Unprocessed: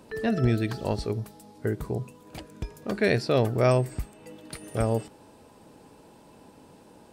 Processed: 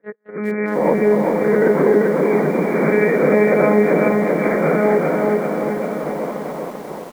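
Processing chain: reverse spectral sustain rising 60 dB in 0.78 s; comb 2.1 ms, depth 78%; on a send: echo that smears into a reverb 472 ms, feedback 56%, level -15 dB; on the sum: level rider gain up to 13 dB; peak limiter -12 dBFS, peak gain reduction 10.5 dB; crossover distortion -52.5 dBFS; slow attack 743 ms; monotone LPC vocoder at 8 kHz 210 Hz; frequency-shifting echo 250 ms, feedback 35%, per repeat +97 Hz, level -11 dB; FFT band-pass 140–2400 Hz; gate -35 dBFS, range -34 dB; bit-crushed delay 391 ms, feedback 55%, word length 8-bit, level -3 dB; trim +5.5 dB

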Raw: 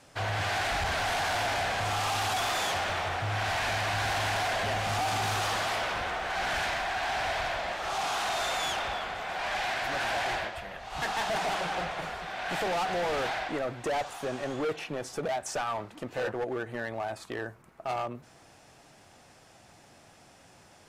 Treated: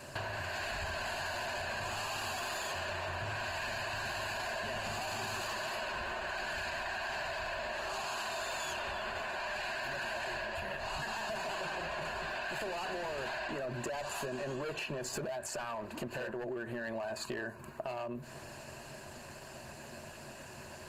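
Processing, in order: rippled EQ curve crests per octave 1.4, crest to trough 11 dB; peak limiter -30.5 dBFS, peak gain reduction 12 dB; compression 12:1, threshold -43 dBFS, peak gain reduction 10 dB; trim +8 dB; Opus 24 kbps 48 kHz

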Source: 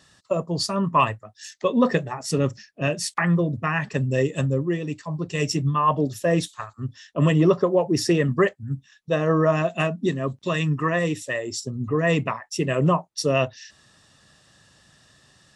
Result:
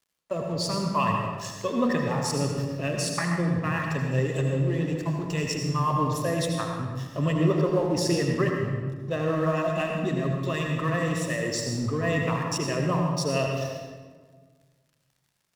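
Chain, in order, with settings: in parallel at -1 dB: compressor with a negative ratio -32 dBFS, ratio -1; on the sum: crossover distortion -39 dBFS; reverberation RT60 1.6 s, pre-delay 72 ms, DRR 1 dB; trim -7.5 dB

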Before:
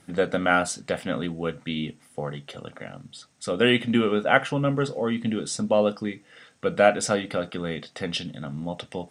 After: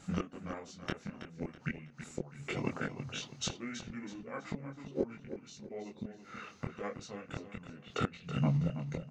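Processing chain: inverted gate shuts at -21 dBFS, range -25 dB; chorus voices 4, 1.4 Hz, delay 23 ms, depth 3 ms; formant shift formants -5 st; on a send: feedback delay 326 ms, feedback 37%, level -10.5 dB; on the sum: trim +5.5 dB

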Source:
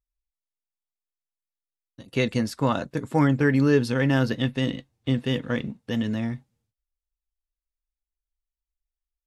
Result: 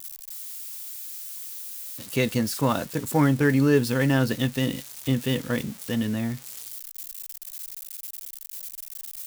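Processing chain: zero-crossing glitches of -26.5 dBFS

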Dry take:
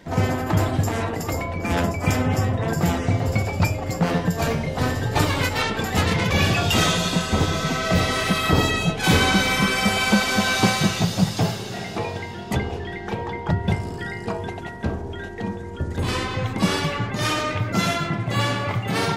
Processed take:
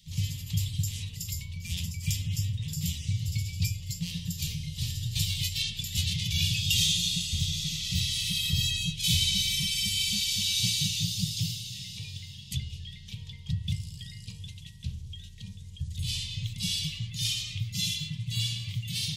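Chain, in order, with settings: elliptic band-stop 150–3200 Hz, stop band 40 dB; resonant low shelf 330 Hz -6 dB, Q 1.5

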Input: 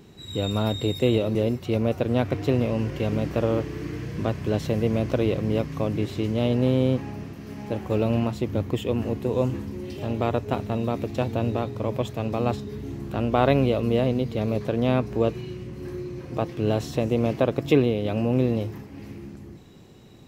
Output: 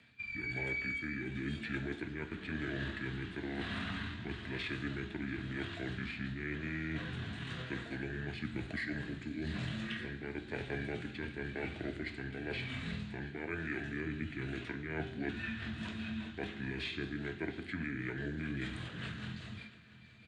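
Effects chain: gate with hold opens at -35 dBFS; high-pass 570 Hz 6 dB/octave; high-order bell 4.2 kHz +12.5 dB; reverse; compression 6:1, threshold -36 dBFS, peak gain reduction 20 dB; reverse; rotary cabinet horn 1 Hz, later 5 Hz, at 14.38 s; pitch shift -8.5 st; delay 682 ms -21.5 dB; on a send at -6 dB: reverberation RT60 0.70 s, pre-delay 3 ms; on the sum: three bands compressed up and down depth 40%; trim +1 dB

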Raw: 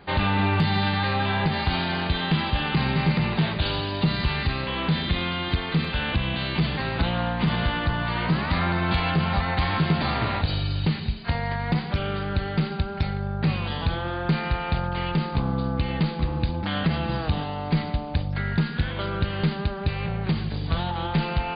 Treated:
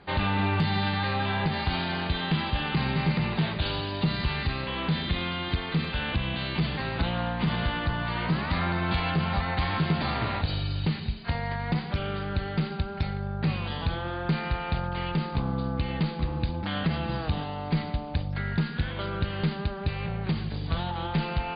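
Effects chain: low-pass 9.7 kHz; trim -3.5 dB

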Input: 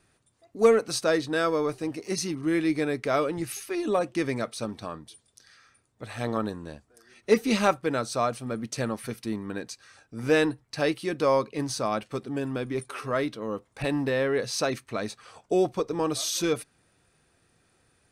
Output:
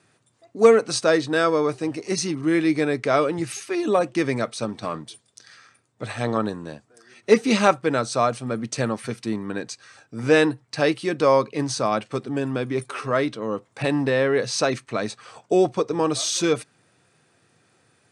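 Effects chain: 4.83–6.12 s: waveshaping leveller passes 1; elliptic band-pass 110–8500 Hz, stop band 50 dB; trim +5.5 dB

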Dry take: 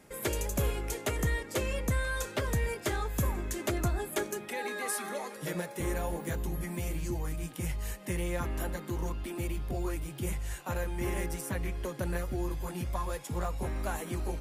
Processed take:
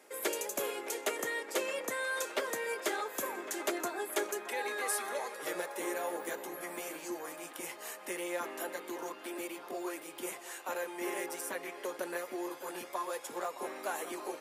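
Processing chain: high-pass 340 Hz 24 dB/octave; band-passed feedback delay 616 ms, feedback 79%, band-pass 1.1 kHz, level -11 dB

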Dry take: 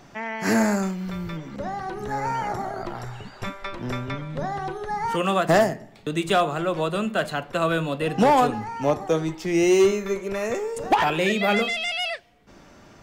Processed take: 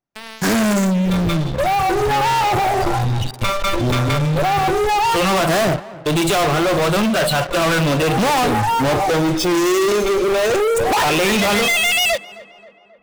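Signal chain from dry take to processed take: spectral noise reduction 23 dB; waveshaping leveller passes 5; peak limiter -15 dBFS, peak gain reduction 5 dB; waveshaping leveller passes 3; tape echo 266 ms, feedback 65%, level -16 dB, low-pass 2.1 kHz

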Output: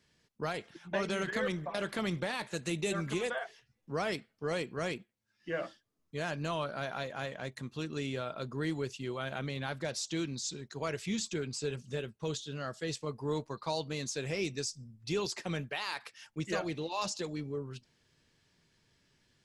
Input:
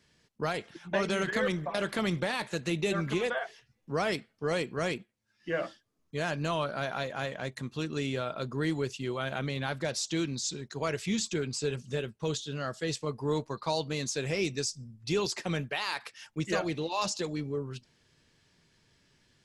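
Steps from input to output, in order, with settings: 2.54–3.44 s: peaking EQ 8.6 kHz +9 dB 0.83 oct; trim -4 dB

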